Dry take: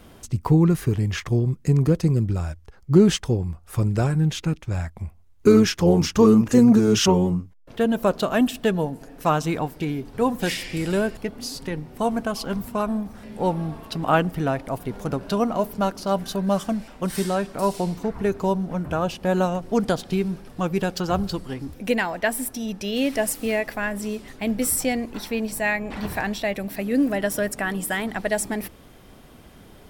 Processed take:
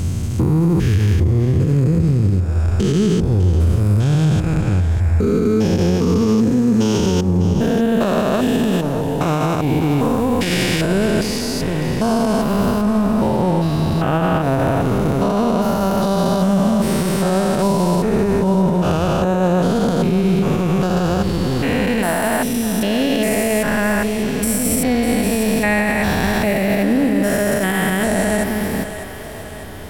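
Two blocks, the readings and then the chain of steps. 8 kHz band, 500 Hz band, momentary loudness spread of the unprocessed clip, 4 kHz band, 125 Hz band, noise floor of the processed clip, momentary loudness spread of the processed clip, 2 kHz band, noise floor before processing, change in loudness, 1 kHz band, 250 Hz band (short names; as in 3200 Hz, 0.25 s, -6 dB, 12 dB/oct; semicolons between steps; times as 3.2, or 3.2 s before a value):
+4.5 dB, +5.0 dB, 12 LU, +4.5 dB, +8.0 dB, -21 dBFS, 3 LU, +6.0 dB, -49 dBFS, +6.0 dB, +5.5 dB, +6.0 dB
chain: stepped spectrum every 0.4 s; bell 87 Hz +8.5 dB 0.36 oct; compressor, threshold -25 dBFS, peak gain reduction 10.5 dB; on a send: split-band echo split 350 Hz, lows 95 ms, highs 0.601 s, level -12.5 dB; on the sum: maximiser +21.5 dB; gain -7 dB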